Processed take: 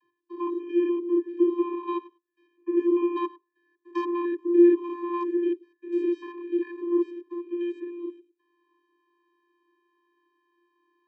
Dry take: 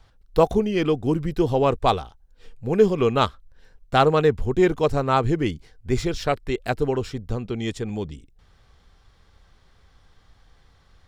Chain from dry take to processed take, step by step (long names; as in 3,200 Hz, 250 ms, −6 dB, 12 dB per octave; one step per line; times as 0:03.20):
spectrum averaged block by block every 100 ms
high shelf with overshoot 3,500 Hz −10 dB, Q 1.5
wave folding −9.5 dBFS
channel vocoder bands 32, square 347 Hz
on a send: convolution reverb RT60 0.35 s, pre-delay 3 ms, DRR 17.5 dB